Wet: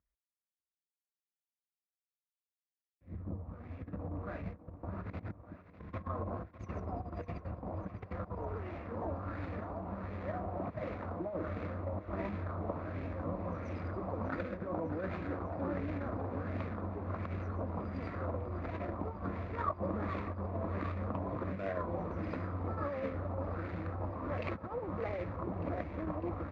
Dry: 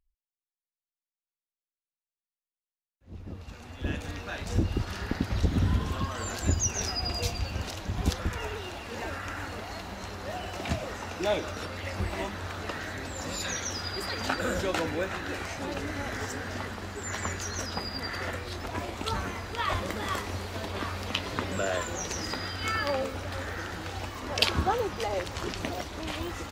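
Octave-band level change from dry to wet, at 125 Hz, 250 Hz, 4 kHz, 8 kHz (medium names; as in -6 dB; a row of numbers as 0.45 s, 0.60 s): -5.5 dB, -4.0 dB, under -25 dB, under -40 dB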